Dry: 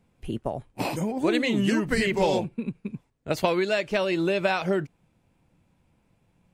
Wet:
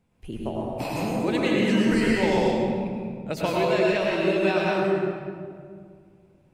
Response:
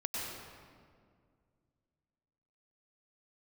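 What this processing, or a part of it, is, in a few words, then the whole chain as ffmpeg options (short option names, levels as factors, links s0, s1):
stairwell: -filter_complex "[1:a]atrim=start_sample=2205[s0];[0:a][s0]afir=irnorm=-1:irlink=0,volume=0.794"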